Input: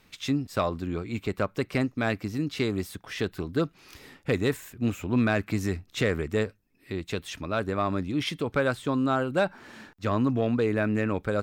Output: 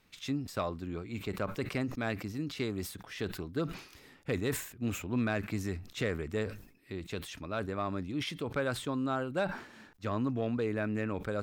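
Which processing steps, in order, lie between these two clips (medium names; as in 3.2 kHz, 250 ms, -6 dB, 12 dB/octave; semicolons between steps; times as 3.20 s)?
decay stretcher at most 100 dB/s; trim -7.5 dB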